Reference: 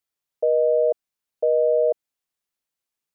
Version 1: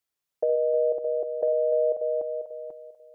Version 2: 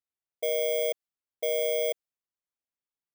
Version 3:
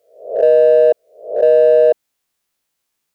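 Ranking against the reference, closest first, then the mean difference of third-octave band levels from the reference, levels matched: 1, 3, 2; 1.5 dB, 5.5 dB, 11.0 dB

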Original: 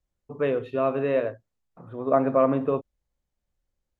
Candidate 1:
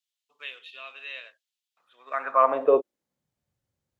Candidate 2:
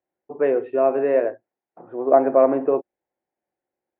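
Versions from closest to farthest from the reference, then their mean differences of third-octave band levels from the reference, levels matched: 2, 1; 5.0 dB, 11.5 dB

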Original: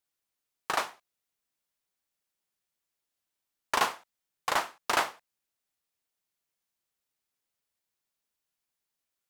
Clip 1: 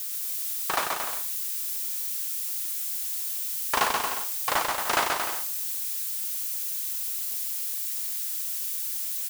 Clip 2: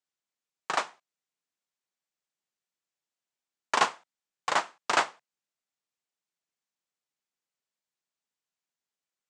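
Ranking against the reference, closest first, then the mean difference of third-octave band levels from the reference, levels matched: 2, 1; 5.0 dB, 9.0 dB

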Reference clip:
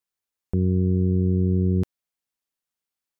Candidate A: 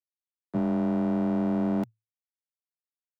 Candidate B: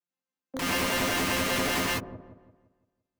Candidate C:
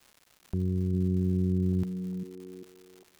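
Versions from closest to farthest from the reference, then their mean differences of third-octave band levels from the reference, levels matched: C, A, B; 4.5 dB, 12.5 dB, 27.0 dB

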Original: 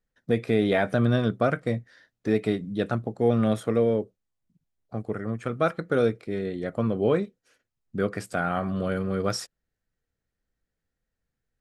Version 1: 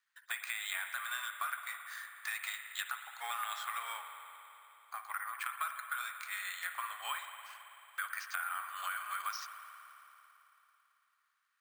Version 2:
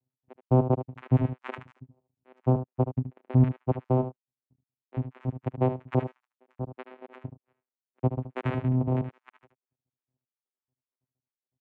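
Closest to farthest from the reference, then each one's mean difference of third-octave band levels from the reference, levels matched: 2, 1; 12.0 dB, 25.0 dB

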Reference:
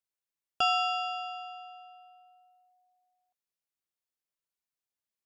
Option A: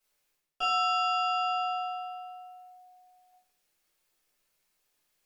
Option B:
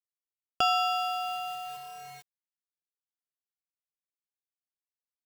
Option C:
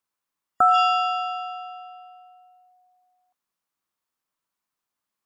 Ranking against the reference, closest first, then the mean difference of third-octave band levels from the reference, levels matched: C, A, B; 1.5 dB, 3.5 dB, 9.5 dB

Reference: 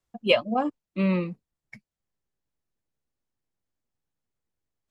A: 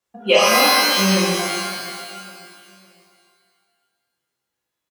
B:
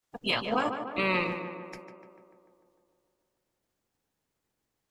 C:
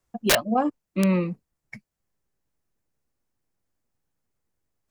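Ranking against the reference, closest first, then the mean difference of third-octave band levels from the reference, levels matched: C, B, A; 3.0 dB, 11.0 dB, 16.5 dB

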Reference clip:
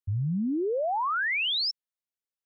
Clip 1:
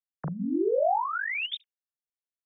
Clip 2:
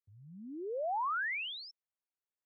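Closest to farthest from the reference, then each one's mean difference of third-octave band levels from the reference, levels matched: 2, 1; 1.5 dB, 4.0 dB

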